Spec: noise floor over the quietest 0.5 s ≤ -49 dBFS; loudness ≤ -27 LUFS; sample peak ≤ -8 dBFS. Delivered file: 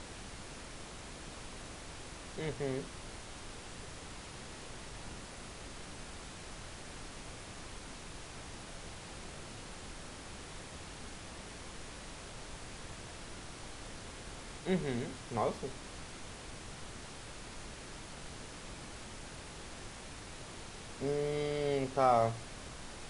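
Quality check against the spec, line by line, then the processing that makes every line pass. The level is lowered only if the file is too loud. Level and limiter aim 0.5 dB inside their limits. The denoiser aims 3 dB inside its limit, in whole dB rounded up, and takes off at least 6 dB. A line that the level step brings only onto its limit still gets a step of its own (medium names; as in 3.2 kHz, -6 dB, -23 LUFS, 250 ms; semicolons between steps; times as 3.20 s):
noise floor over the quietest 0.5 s -48 dBFS: fail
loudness -41.5 LUFS: pass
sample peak -16.5 dBFS: pass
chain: noise reduction 6 dB, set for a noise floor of -48 dBFS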